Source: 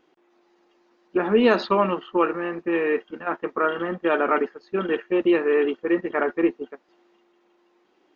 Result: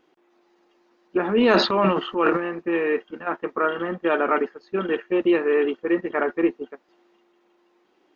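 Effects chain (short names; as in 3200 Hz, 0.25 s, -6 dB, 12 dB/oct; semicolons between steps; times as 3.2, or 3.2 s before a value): 1.25–2.4 transient shaper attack -5 dB, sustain +11 dB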